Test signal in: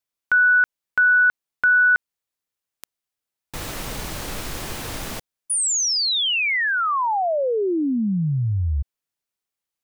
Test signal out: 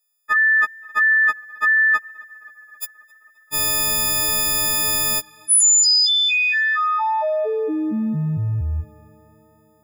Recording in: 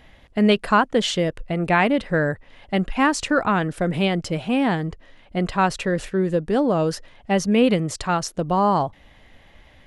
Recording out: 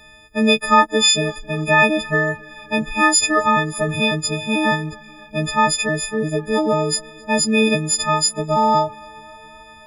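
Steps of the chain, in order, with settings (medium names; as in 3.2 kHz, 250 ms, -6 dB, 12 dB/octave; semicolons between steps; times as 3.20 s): partials quantised in pitch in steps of 6 st; on a send: tape echo 265 ms, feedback 78%, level -23.5 dB, low-pass 3.8 kHz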